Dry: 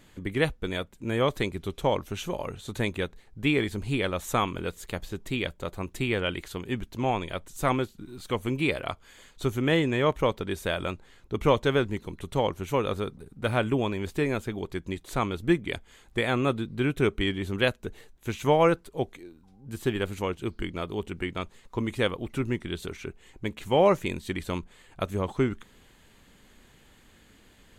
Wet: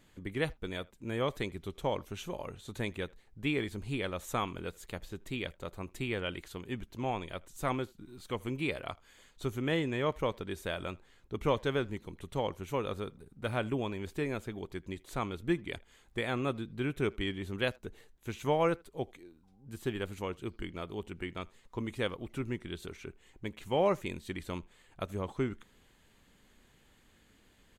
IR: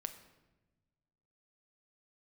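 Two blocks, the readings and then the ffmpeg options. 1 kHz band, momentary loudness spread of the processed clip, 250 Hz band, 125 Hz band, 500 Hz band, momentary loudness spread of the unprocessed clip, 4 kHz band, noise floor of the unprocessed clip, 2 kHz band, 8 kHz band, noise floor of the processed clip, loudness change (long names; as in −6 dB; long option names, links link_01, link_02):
−7.5 dB, 12 LU, −7.5 dB, −7.5 dB, −7.5 dB, 12 LU, −7.5 dB, −58 dBFS, −7.5 dB, −7.5 dB, −65 dBFS, −7.5 dB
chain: -filter_complex "[0:a]asplit=2[link_01][link_02];[link_02]adelay=80,highpass=300,lowpass=3400,asoftclip=type=hard:threshold=-17dB,volume=-25dB[link_03];[link_01][link_03]amix=inputs=2:normalize=0,volume=-7.5dB"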